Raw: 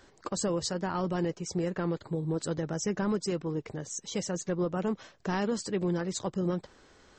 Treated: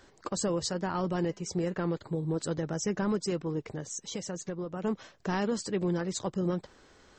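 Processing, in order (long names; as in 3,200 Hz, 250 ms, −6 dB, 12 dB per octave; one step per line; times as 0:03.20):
0:01.25–0:01.74: hum removal 202.6 Hz, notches 23
0:03.79–0:04.84: downward compressor 6 to 1, threshold −33 dBFS, peak gain reduction 7.5 dB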